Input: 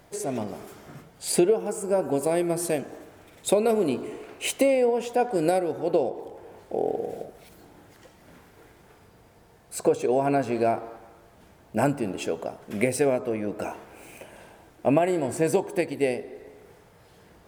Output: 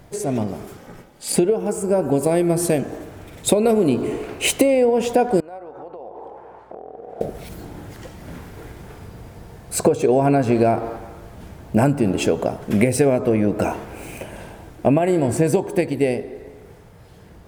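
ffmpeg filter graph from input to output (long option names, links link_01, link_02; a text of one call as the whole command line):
ffmpeg -i in.wav -filter_complex "[0:a]asettb=1/sr,asplit=3[link_01][link_02][link_03];[link_01]atrim=end=0.774[link_04];[link_02]atrim=start=0.77:end=1.36,asetpts=PTS-STARTPTS,afade=type=in:duration=0.004:curve=qsin,afade=type=out:start_time=0.586:duration=0.004:curve=qsin,highpass=180,aecho=1:1:2.9:0.76,atrim=end_sample=26019,aeval=exprs='val(0)*sin(2*PI*120*n/s)':channel_layout=same[link_05];[link_03]atrim=start=1.356[link_06];[link_04][link_05]acrossfade=duration=0.004:curve1=hsin:curve2=qsin[link_07];[link_07][link_06]acrossfade=duration=0.004:curve1=qsin:curve2=hsin,asettb=1/sr,asplit=3[link_08][link_09][link_10];[link_08]atrim=end=5.404[link_11];[link_09]atrim=start=5.4:end=7.21,asetpts=PTS-STARTPTS,afade=type=in:duration=0.004:curve=qsin,afade=type=out:start_time=1.806:duration=0.004:curve=qsin,acompressor=threshold=-34dB:ratio=16:attack=3.2:release=140:knee=1:detection=peak,aeval=exprs='val(0)+0.00251*(sin(2*PI*60*n/s)+sin(2*PI*2*60*n/s)/2+sin(2*PI*3*60*n/s)/3+sin(2*PI*4*60*n/s)/4+sin(2*PI*5*60*n/s)/5)':channel_layout=same,bandpass=frequency=1000:width_type=q:width=1.9[link_12];[link_10]atrim=start=7.206[link_13];[link_11][link_12]acrossfade=duration=0.004:curve1=hsin:curve2=qsin[link_14];[link_14][link_13]acrossfade=duration=0.004:curve1=qsin:curve2=hsin,dynaudnorm=framelen=340:gausssize=17:maxgain=11.5dB,lowshelf=frequency=220:gain=11,acompressor=threshold=-17dB:ratio=4,volume=3.5dB" out.wav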